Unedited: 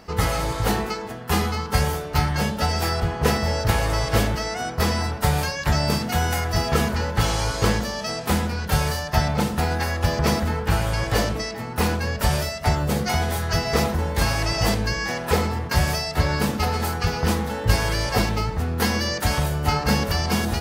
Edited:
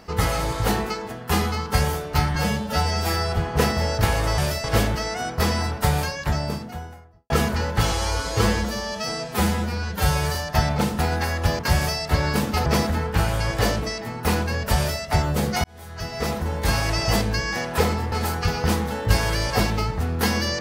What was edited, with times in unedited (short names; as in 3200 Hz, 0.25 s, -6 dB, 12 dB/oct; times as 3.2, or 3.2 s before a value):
2.35–3.03 stretch 1.5×
5.23–6.7 studio fade out
7.32–8.94 stretch 1.5×
12.29–12.55 copy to 4.04
13.17–14.26 fade in linear
15.65–16.71 move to 10.18